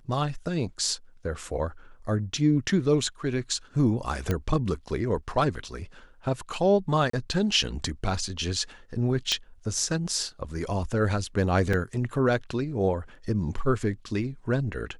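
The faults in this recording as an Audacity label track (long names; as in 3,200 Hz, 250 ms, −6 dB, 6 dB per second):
4.310000	4.310000	click −13 dBFS
7.100000	7.130000	drop-out 34 ms
9.320000	9.320000	click −11 dBFS
11.730000	11.730000	drop-out 4.1 ms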